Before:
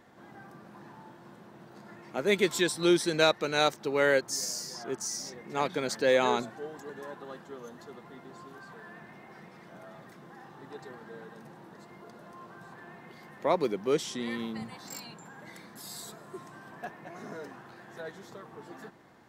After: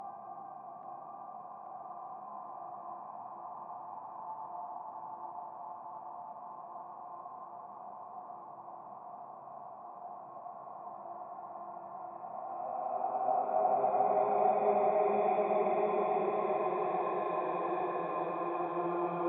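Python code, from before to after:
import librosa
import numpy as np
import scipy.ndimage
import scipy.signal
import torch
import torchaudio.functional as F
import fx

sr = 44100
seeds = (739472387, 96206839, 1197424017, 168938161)

p1 = fx.formant_cascade(x, sr, vowel='a')
p2 = fx.rider(p1, sr, range_db=10, speed_s=2.0)
p3 = p1 + (p2 * 10.0 ** (-2.5 / 20.0))
p4 = fx.paulstretch(p3, sr, seeds[0], factor=8.1, window_s=0.5, from_s=0.46)
p5 = fx.env_lowpass_down(p4, sr, base_hz=2500.0, full_db=-36.0)
p6 = fx.echo_wet_bandpass(p5, sr, ms=831, feedback_pct=69, hz=990.0, wet_db=-4.5)
y = p6 * 10.0 ** (9.0 / 20.0)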